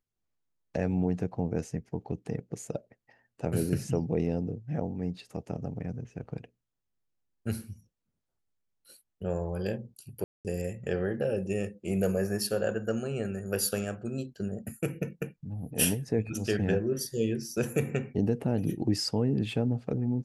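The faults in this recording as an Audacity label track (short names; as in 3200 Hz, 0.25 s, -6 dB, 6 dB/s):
10.240000	10.450000	gap 0.208 s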